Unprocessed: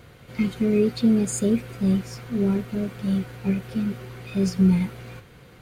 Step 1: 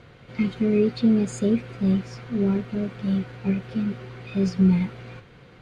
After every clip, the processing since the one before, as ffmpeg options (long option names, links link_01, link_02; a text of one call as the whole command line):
ffmpeg -i in.wav -af "lowpass=4600,equalizer=frequency=67:width=2.8:gain=-7" out.wav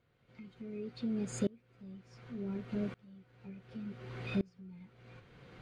ffmpeg -i in.wav -af "acompressor=threshold=-37dB:ratio=2,aeval=exprs='val(0)*pow(10,-28*if(lt(mod(-0.68*n/s,1),2*abs(-0.68)/1000),1-mod(-0.68*n/s,1)/(2*abs(-0.68)/1000),(mod(-0.68*n/s,1)-2*abs(-0.68)/1000)/(1-2*abs(-0.68)/1000))/20)':channel_layout=same,volume=1.5dB" out.wav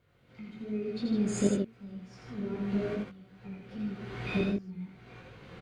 ffmpeg -i in.wav -filter_complex "[0:a]asplit=2[link_01][link_02];[link_02]aecho=0:1:84.55|154.5:0.708|0.501[link_03];[link_01][link_03]amix=inputs=2:normalize=0,flanger=delay=19:depth=3.6:speed=2.6,volume=8dB" out.wav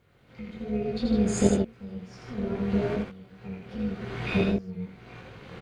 ffmpeg -i in.wav -af "tremolo=f=280:d=0.667,volume=8dB" out.wav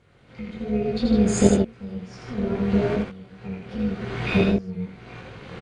ffmpeg -i in.wav -af "aresample=22050,aresample=44100,volume=5dB" out.wav